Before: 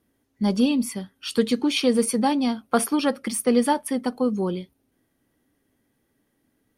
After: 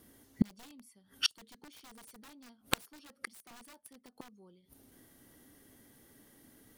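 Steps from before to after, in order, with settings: high shelf 4300 Hz +8 dB; notch 2500 Hz, Q 11; wrapped overs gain 15 dB; flipped gate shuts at -21 dBFS, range -41 dB; gain +7.5 dB

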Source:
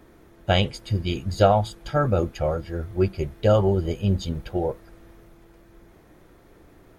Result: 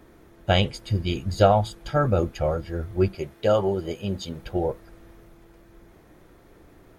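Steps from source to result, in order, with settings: 3.15–4.42 HPF 290 Hz 6 dB/oct

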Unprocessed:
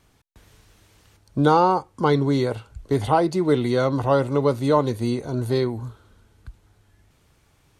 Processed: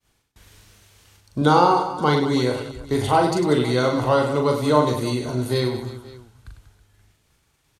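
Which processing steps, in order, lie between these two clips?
expander -53 dBFS; tilt shelf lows -3.5 dB, about 1500 Hz; reverse bouncing-ball echo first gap 40 ms, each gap 1.5×, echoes 5; gain +1.5 dB

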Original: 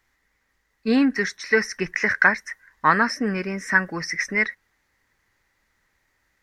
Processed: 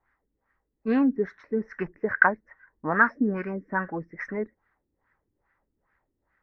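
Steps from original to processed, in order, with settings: LFO low-pass sine 2.4 Hz 290–1600 Hz; gain -4.5 dB

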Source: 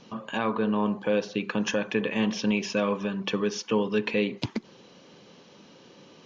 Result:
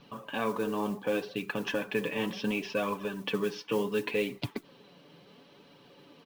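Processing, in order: LPF 4600 Hz 24 dB/oct; comb 7 ms, depth 40%; modulation noise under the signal 23 dB; flange 0.69 Hz, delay 0.7 ms, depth 6.2 ms, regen +56%

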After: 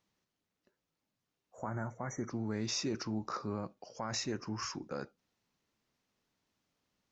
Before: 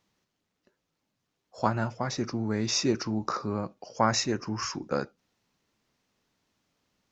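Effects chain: limiter -19.5 dBFS, peak gain reduction 10.5 dB; spectral repair 1.39–2.28, 2300–5700 Hz before; gain -6.5 dB

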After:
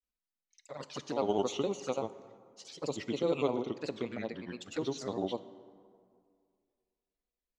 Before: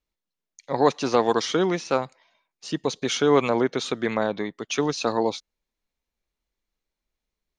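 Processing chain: grains 0.1 s, grains 20/s, pitch spread up and down by 3 st; envelope flanger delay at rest 4 ms, full sweep at -22.5 dBFS; plate-style reverb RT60 2.2 s, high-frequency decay 0.5×, DRR 14 dB; gain -8 dB

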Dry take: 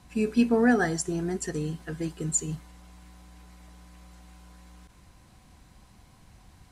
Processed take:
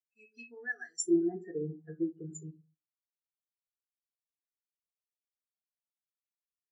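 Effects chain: band-pass 7100 Hz, Q 0.68, from 1.05 s 1000 Hz, from 2.51 s 5600 Hz; shoebox room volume 91 m³, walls mixed, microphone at 0.49 m; spectral expander 2.5:1

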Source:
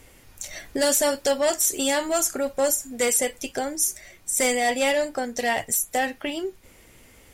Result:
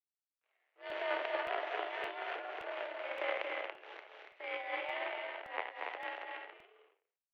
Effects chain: spectral trails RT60 1.03 s; transient shaper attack -7 dB, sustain +11 dB; requantised 6-bit, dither none; power-law curve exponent 3; loudspeakers at several distances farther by 79 m -6 dB, 97 m -5 dB; mistuned SSB +57 Hz 360–2800 Hz; crackling interface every 0.57 s, samples 64, repeat, from 0.9; gain +1.5 dB

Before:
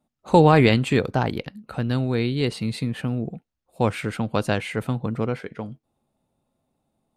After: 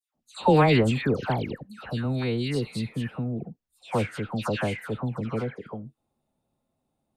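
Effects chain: dispersion lows, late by 0.148 s, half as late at 1700 Hz; gain -4 dB

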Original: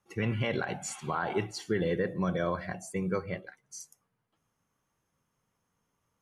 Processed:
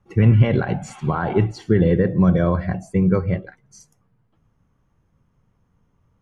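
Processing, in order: RIAA curve playback; gain +7 dB

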